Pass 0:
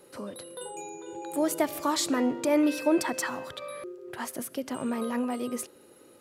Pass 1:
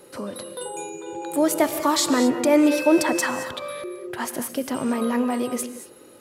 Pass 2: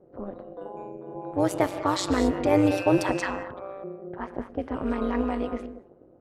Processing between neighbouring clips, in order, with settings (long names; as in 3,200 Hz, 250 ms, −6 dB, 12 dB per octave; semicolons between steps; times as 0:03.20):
convolution reverb, pre-delay 3 ms, DRR 9.5 dB; level +6.5 dB
low-pass that shuts in the quiet parts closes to 450 Hz, open at −15.5 dBFS; high-shelf EQ 4,500 Hz −8.5 dB; amplitude modulation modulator 190 Hz, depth 70%